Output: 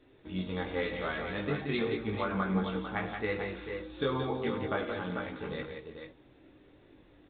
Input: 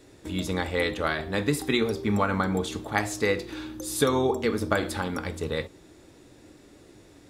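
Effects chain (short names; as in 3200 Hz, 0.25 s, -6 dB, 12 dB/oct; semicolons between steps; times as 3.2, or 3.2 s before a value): tapped delay 55/99/175/190/324/444 ms -17/-12.5/-6.5/-16.5/-18.5/-7.5 dB; chorus voices 4, 0.34 Hz, delay 19 ms, depth 3.6 ms; gain -5.5 dB; µ-law 64 kbps 8000 Hz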